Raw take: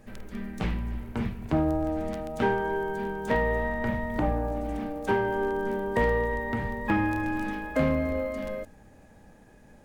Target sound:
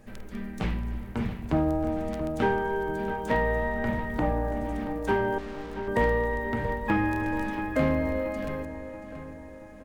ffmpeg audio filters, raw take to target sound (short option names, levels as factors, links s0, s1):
-filter_complex "[0:a]asettb=1/sr,asplit=3[s0][s1][s2];[s0]atrim=end=5.384[s3];[s1]atrim=start=5.38:end=5.88,asetpts=PTS-STARTPTS,afade=t=in:d=0.004:c=qsin,afade=t=out:st=0.496:d=0.004:c=qsin,aeval=exprs='(tanh(100*val(0)+0.7)-tanh(0.7))/100':c=same[s4];[s2]atrim=start=5.876[s5];[s3][s4]acrossfade=d=0.004:c1=hsin:c2=qsin[s6];[s6][s5]acrossfade=d=0.004:c1=qsin:c2=hsin,asplit=2[s7][s8];[s8]adelay=680,lowpass=f=3800:p=1,volume=0.282,asplit=2[s9][s10];[s10]adelay=680,lowpass=f=3800:p=1,volume=0.51,asplit=2[s11][s12];[s12]adelay=680,lowpass=f=3800:p=1,volume=0.51,asplit=2[s13][s14];[s14]adelay=680,lowpass=f=3800:p=1,volume=0.51,asplit=2[s15][s16];[s16]adelay=680,lowpass=f=3800:p=1,volume=0.51[s17];[s7][s9][s11][s13][s15][s17]amix=inputs=6:normalize=0"